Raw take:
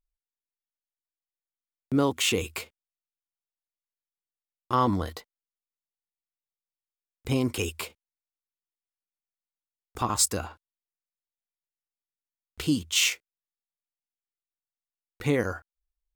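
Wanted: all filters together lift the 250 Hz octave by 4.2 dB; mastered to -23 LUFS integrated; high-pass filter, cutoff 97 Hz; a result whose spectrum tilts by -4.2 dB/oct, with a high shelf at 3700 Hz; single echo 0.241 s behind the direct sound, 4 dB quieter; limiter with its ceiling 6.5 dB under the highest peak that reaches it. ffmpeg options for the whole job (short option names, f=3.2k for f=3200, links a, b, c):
-af "highpass=97,equalizer=f=250:t=o:g=5,highshelf=f=3.7k:g=4,alimiter=limit=-13.5dB:level=0:latency=1,aecho=1:1:241:0.631,volume=3dB"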